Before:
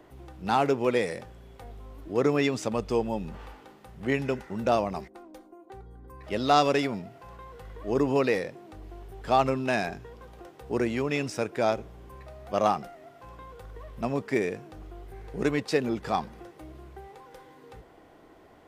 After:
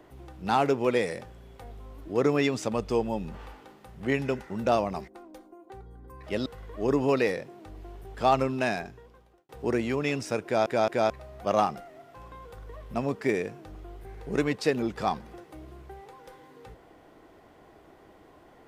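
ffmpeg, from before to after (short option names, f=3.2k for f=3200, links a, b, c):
-filter_complex "[0:a]asplit=6[a][b][c][d][e][f];[a]atrim=end=6.462[g];[b]atrim=start=7.528:end=10.56,asetpts=PTS-STARTPTS,afade=t=out:st=2.122:d=0.91[h];[c]atrim=start=10.56:end=11.732,asetpts=PTS-STARTPTS,afade=t=in:d=0.004:c=hsin[i];[d]atrim=start=11.508:end=11.732[j];[e]atrim=start=11.508:end=11.732[k];[f]atrim=start=12.168[l];[h][i]concat=n=2:v=0:a=1[m];[g][m]acrossfade=d=0.004:c1=hsin:c2=hsin[n];[n][j]acrossfade=d=0.004:c1=hsin:c2=hsin[o];[o][k]acrossfade=d=0.004:c1=hsin:c2=hsin[p];[p][l]acrossfade=d=0.004:c1=hsin:c2=hsin"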